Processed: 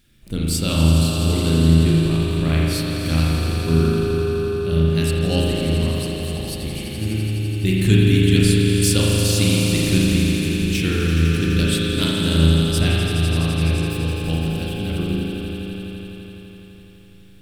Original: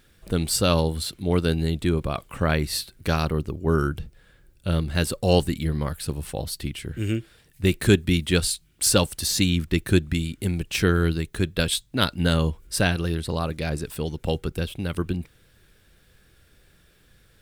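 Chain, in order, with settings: band shelf 840 Hz -9 dB 2.4 oct; swelling echo 84 ms, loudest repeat 5, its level -10 dB; spring tank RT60 2.1 s, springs 37 ms, chirp 65 ms, DRR -4 dB; gain -1 dB

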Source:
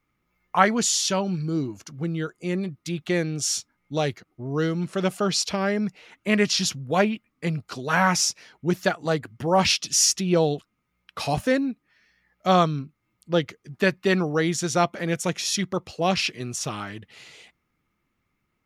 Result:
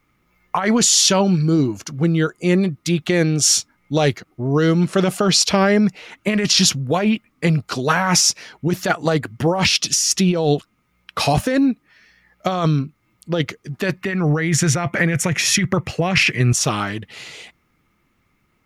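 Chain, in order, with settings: 14.01–16.53 ten-band EQ 125 Hz +11 dB, 2000 Hz +11 dB, 4000 Hz -7 dB; negative-ratio compressor -24 dBFS, ratio -1; gain +8 dB

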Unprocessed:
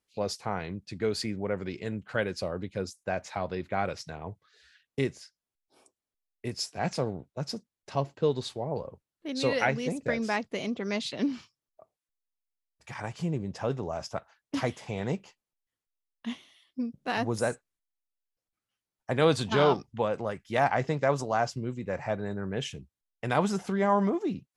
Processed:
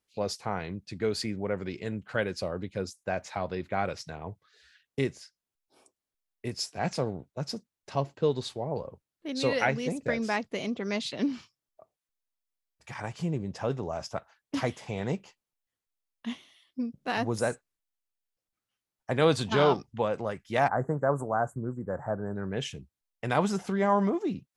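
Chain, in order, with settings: 20.68–22.36 elliptic band-stop 1500–8300 Hz, stop band 40 dB

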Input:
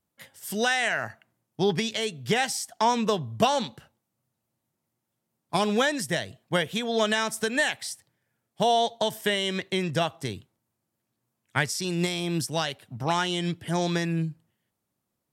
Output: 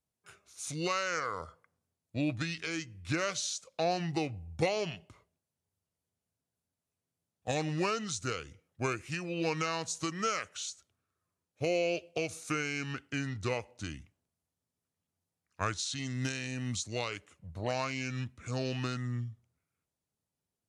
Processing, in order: dynamic EQ 9600 Hz, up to +6 dB, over -49 dBFS, Q 0.9; speed mistake 45 rpm record played at 33 rpm; gain -8.5 dB

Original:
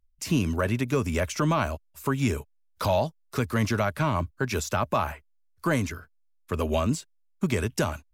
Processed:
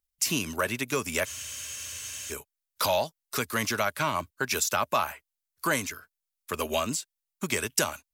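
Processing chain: low shelf 140 Hz -5 dB; transient shaper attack +1 dB, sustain -3 dB; tilt +3 dB/oct; wow and flutter 17 cents; spectral freeze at 1.28, 1.03 s

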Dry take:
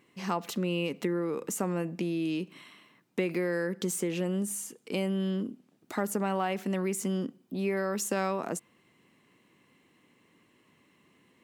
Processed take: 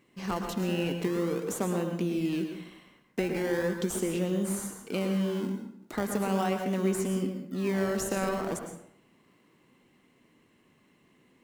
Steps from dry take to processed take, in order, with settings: in parallel at -7 dB: decimation with a swept rate 26×, swing 100% 0.4 Hz; on the sum: plate-style reverb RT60 0.69 s, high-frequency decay 0.65×, pre-delay 95 ms, DRR 5 dB; gain -2.5 dB

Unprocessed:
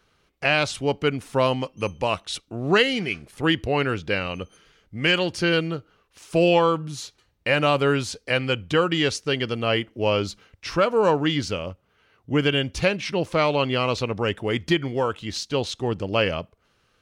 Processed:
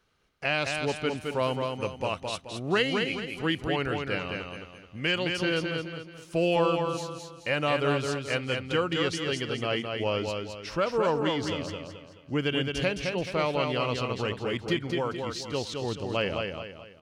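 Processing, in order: feedback echo 0.215 s, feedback 38%, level -4.5 dB; gain -7 dB

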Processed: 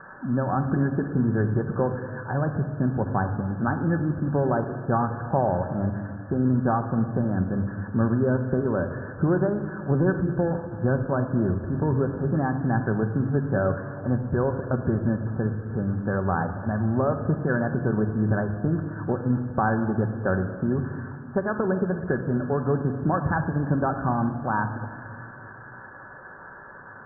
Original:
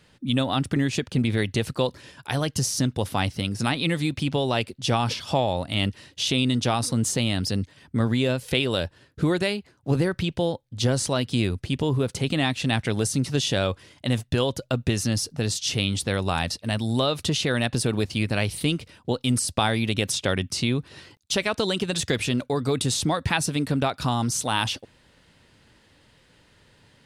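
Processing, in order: switching spikes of -15 dBFS; Chebyshev low-pass 1700 Hz, order 10; reverb RT60 1.9 s, pre-delay 5 ms, DRR 5.5 dB

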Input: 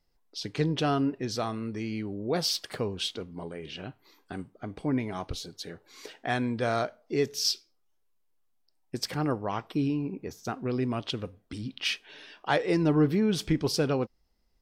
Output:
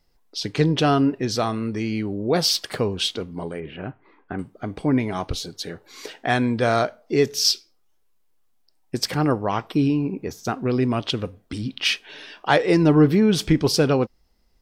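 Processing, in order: 3.6–4.39 LPF 2200 Hz 24 dB/oct; gain +8 dB

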